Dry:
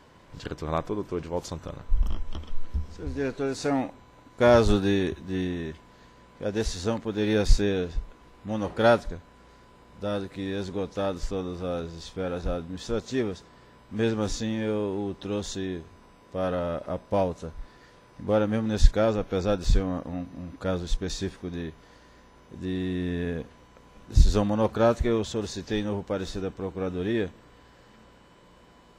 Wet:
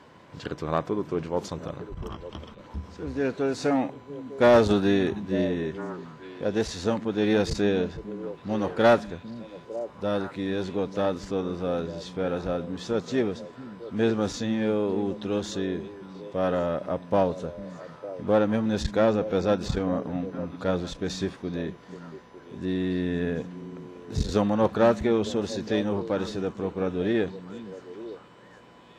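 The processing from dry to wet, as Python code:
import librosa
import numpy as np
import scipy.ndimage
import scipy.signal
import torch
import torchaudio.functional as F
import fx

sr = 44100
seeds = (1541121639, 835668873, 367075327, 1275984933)

y = fx.diode_clip(x, sr, knee_db=-17.5)
y = scipy.signal.sosfilt(scipy.signal.butter(2, 110.0, 'highpass', fs=sr, output='sos'), y)
y = fx.high_shelf(y, sr, hz=5800.0, db=-9.0)
y = np.clip(10.0 ** (13.0 / 20.0) * y, -1.0, 1.0) / 10.0 ** (13.0 / 20.0)
y = fx.echo_stepped(y, sr, ms=452, hz=170.0, octaves=1.4, feedback_pct=70, wet_db=-9)
y = y * librosa.db_to_amplitude(3.5)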